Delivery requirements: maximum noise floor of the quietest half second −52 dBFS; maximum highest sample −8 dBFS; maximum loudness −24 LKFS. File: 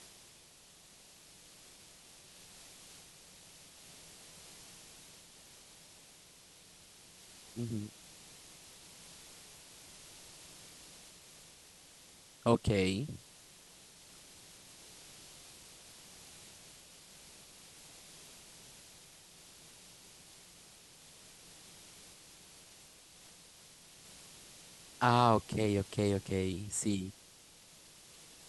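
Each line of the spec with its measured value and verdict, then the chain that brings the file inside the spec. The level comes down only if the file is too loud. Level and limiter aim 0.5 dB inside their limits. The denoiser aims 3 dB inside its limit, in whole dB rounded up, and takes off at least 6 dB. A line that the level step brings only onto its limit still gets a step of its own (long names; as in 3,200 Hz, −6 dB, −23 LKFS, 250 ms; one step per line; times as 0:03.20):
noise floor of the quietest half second −60 dBFS: in spec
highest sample −11.5 dBFS: in spec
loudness −33.5 LKFS: in spec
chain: no processing needed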